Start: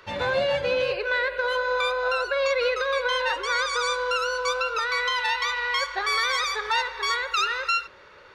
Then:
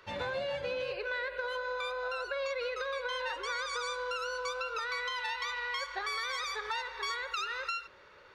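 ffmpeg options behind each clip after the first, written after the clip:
ffmpeg -i in.wav -af "acompressor=threshold=-25dB:ratio=6,volume=-7dB" out.wav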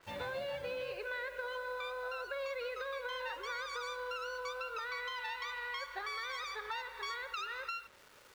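ffmpeg -i in.wav -af "acrusher=bits=8:mix=0:aa=0.000001,adynamicequalizer=threshold=0.00316:dfrequency=4500:dqfactor=0.7:tfrequency=4500:tqfactor=0.7:attack=5:release=100:ratio=0.375:range=3:mode=cutabove:tftype=highshelf,volume=-4.5dB" out.wav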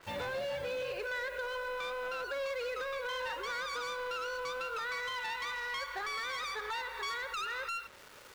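ffmpeg -i in.wav -filter_complex "[0:a]asplit=2[link_01][link_02];[link_02]alimiter=level_in=14dB:limit=-24dB:level=0:latency=1,volume=-14dB,volume=-2dB[link_03];[link_01][link_03]amix=inputs=2:normalize=0,asoftclip=type=hard:threshold=-34dB,volume=1dB" out.wav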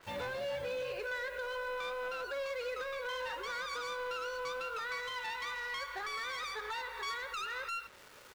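ffmpeg -i in.wav -filter_complex "[0:a]asplit=2[link_01][link_02];[link_02]adelay=16,volume=-12.5dB[link_03];[link_01][link_03]amix=inputs=2:normalize=0,volume=-2dB" out.wav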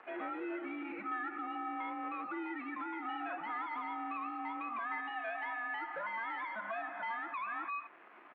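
ffmpeg -i in.wav -af "highpass=frequency=440:width=0.5412,highpass=frequency=440:width=1.3066,highpass=frequency=560:width_type=q:width=0.5412,highpass=frequency=560:width_type=q:width=1.307,lowpass=frequency=2600:width_type=q:width=0.5176,lowpass=frequency=2600:width_type=q:width=0.7071,lowpass=frequency=2600:width_type=q:width=1.932,afreqshift=-220,acompressor=mode=upward:threshold=-55dB:ratio=2.5,volume=1dB" out.wav

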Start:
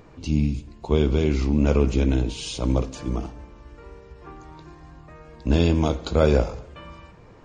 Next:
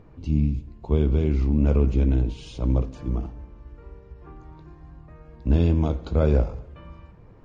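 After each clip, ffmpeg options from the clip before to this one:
ffmpeg -i in.wav -af "lowpass=frequency=2100:poles=1,lowshelf=frequency=210:gain=9,volume=-6dB" out.wav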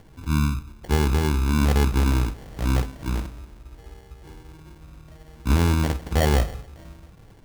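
ffmpeg -i in.wav -af "acrusher=samples=35:mix=1:aa=0.000001" out.wav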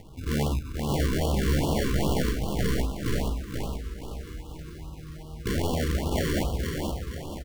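ffmpeg -i in.wav -af "aeval=exprs='0.0668*(abs(mod(val(0)/0.0668+3,4)-2)-1)':channel_layout=same,aecho=1:1:478|956|1434|1912|2390|2868:0.631|0.278|0.122|0.0537|0.0236|0.0104,afftfilt=real='re*(1-between(b*sr/1024,680*pow(2000/680,0.5+0.5*sin(2*PI*2.5*pts/sr))/1.41,680*pow(2000/680,0.5+0.5*sin(2*PI*2.5*pts/sr))*1.41))':imag='im*(1-between(b*sr/1024,680*pow(2000/680,0.5+0.5*sin(2*PI*2.5*pts/sr))/1.41,680*pow(2000/680,0.5+0.5*sin(2*PI*2.5*pts/sr))*1.41))':win_size=1024:overlap=0.75,volume=2.5dB" out.wav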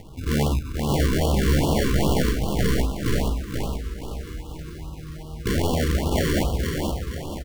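ffmpeg -i in.wav -af "aeval=exprs='0.178*(cos(1*acos(clip(val(0)/0.178,-1,1)))-cos(1*PI/2))+0.002*(cos(2*acos(clip(val(0)/0.178,-1,1)))-cos(2*PI/2))':channel_layout=same,volume=4.5dB" out.wav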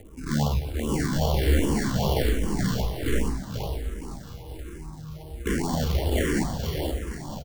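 ffmpeg -i in.wav -filter_complex "[0:a]acrossover=split=380|2700[link_01][link_02][link_03];[link_03]acrusher=bits=7:mix=0:aa=0.000001[link_04];[link_01][link_02][link_04]amix=inputs=3:normalize=0,aecho=1:1:221:0.2,asplit=2[link_05][link_06];[link_06]afreqshift=-1.3[link_07];[link_05][link_07]amix=inputs=2:normalize=1" out.wav

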